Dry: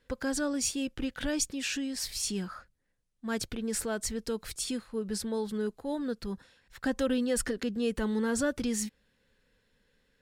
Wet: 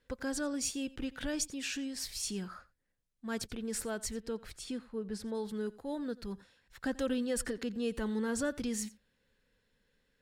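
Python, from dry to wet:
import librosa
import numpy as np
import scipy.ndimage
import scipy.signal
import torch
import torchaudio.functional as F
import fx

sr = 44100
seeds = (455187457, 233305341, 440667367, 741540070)

y = fx.high_shelf(x, sr, hz=4400.0, db=-10.5, at=(4.2, 5.35))
y = y + 10.0 ** (-20.5 / 20.0) * np.pad(y, (int(88 * sr / 1000.0), 0))[:len(y)]
y = F.gain(torch.from_numpy(y), -4.5).numpy()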